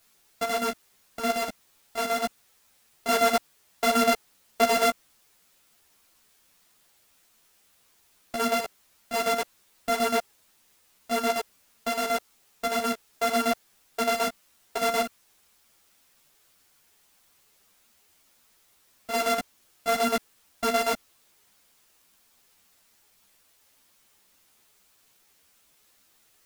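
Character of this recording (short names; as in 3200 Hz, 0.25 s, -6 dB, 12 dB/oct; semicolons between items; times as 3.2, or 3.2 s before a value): a buzz of ramps at a fixed pitch in blocks of 64 samples; chopped level 8.1 Hz, depth 60%, duty 60%; a quantiser's noise floor 10-bit, dither triangular; a shimmering, thickened sound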